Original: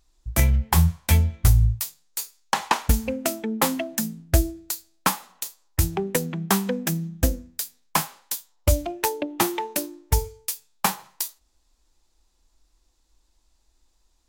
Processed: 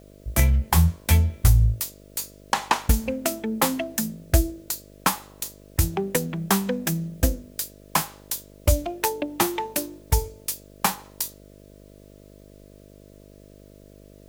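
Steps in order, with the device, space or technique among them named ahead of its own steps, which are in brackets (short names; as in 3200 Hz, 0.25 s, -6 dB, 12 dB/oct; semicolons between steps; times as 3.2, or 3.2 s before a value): video cassette with head-switching buzz (buzz 50 Hz, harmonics 13, -49 dBFS -2 dB/oct; white noise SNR 38 dB)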